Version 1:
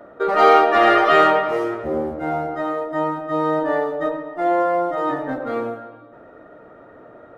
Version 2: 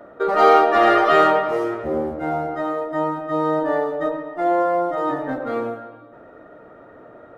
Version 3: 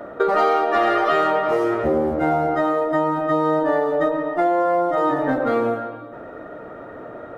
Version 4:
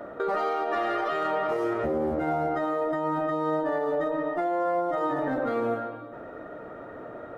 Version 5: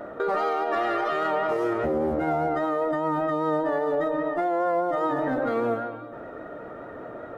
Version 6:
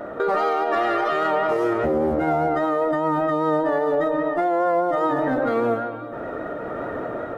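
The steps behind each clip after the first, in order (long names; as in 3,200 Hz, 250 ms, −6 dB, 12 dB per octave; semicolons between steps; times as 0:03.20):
dynamic equaliser 2,400 Hz, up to −4 dB, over −33 dBFS, Q 1.2
downward compressor 6 to 1, threshold −24 dBFS, peak gain reduction 14.5 dB; level +8 dB
brickwall limiter −15 dBFS, peak gain reduction 7 dB; level −4.5 dB
pitch vibrato 5 Hz 31 cents; level +2 dB
camcorder AGC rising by 12 dB per second; level +4 dB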